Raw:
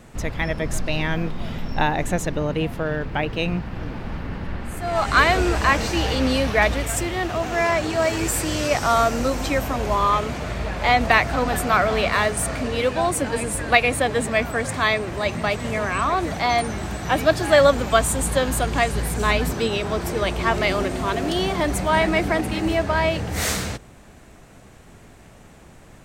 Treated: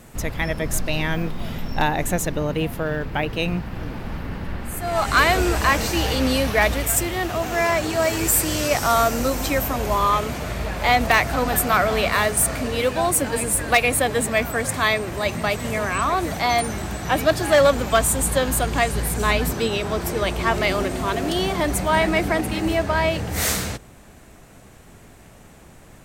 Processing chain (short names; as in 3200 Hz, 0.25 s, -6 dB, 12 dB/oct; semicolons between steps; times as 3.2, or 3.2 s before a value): bell 14000 Hz +14 dB 0.9 oct, from 16.82 s +7.5 dB; hard clip -9.5 dBFS, distortion -23 dB